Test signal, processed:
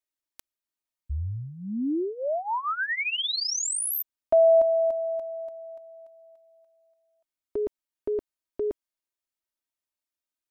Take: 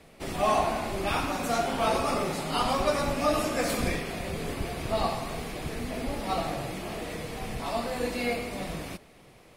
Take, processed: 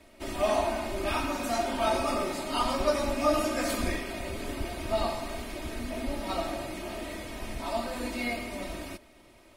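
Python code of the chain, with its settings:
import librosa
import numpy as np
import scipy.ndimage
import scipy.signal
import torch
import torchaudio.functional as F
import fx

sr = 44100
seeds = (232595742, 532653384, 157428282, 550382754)

y = x + 0.75 * np.pad(x, (int(3.2 * sr / 1000.0), 0))[:len(x)]
y = y * librosa.db_to_amplitude(-3.5)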